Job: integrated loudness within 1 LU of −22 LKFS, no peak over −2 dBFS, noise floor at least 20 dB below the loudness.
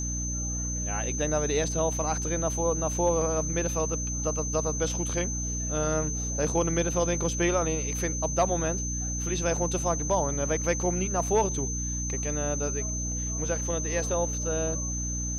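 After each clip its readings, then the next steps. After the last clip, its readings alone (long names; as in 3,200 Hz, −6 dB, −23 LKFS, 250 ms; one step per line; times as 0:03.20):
mains hum 60 Hz; hum harmonics up to 300 Hz; level of the hum −30 dBFS; interfering tone 6,200 Hz; level of the tone −32 dBFS; integrated loudness −27.5 LKFS; sample peak −13.0 dBFS; target loudness −22.0 LKFS
→ mains-hum notches 60/120/180/240/300 Hz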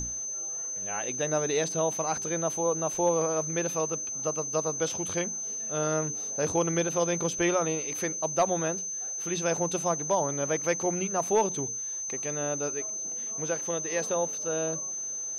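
mains hum none found; interfering tone 6,200 Hz; level of the tone −32 dBFS
→ notch filter 6,200 Hz, Q 30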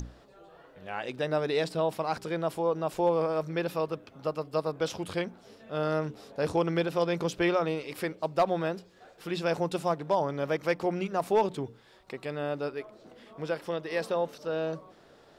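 interfering tone none found; integrated loudness −30.5 LKFS; sample peak −15.5 dBFS; target loudness −22.0 LKFS
→ level +8.5 dB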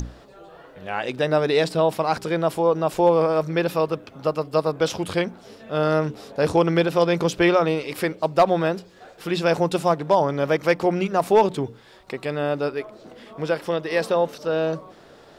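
integrated loudness −22.0 LKFS; sample peak −7.0 dBFS; background noise floor −49 dBFS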